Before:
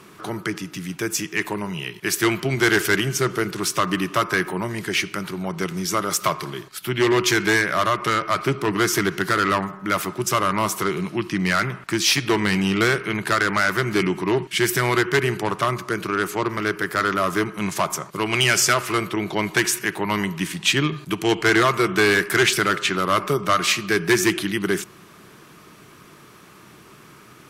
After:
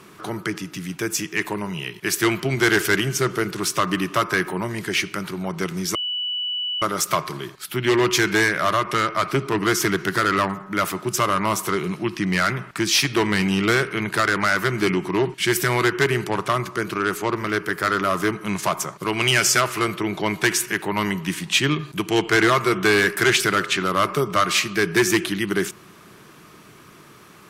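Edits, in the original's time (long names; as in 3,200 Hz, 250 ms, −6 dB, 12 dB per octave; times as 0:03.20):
0:05.95: insert tone 2,960 Hz −23 dBFS 0.87 s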